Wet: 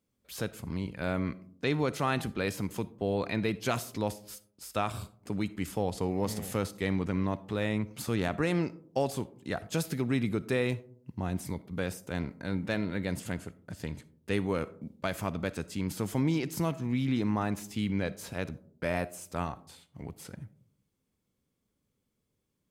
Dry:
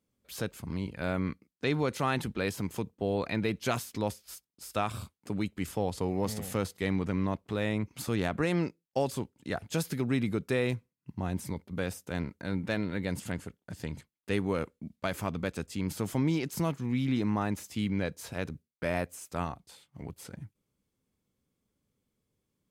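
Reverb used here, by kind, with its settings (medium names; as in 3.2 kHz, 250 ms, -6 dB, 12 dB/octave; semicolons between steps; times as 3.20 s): algorithmic reverb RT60 0.62 s, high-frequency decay 0.3×, pre-delay 15 ms, DRR 17 dB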